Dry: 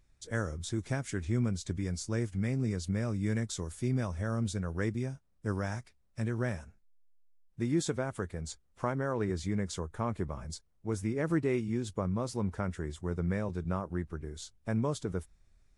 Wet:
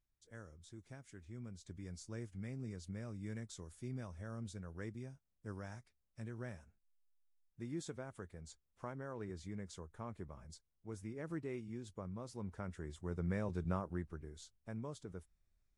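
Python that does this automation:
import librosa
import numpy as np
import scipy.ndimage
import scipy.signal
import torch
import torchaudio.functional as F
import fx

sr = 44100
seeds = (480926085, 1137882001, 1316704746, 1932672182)

y = fx.gain(x, sr, db=fx.line((1.33, -20.0), (1.91, -13.5), (12.24, -13.5), (13.65, -3.5), (14.74, -14.0)))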